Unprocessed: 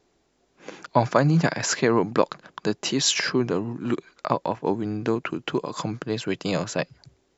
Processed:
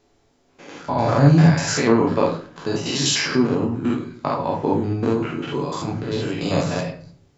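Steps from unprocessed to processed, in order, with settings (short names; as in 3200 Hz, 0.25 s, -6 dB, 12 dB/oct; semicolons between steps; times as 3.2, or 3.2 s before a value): stepped spectrum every 0.1 s; on a send: reverb RT60 0.45 s, pre-delay 7 ms, DRR 1.5 dB; on the sum: gain +3.5 dB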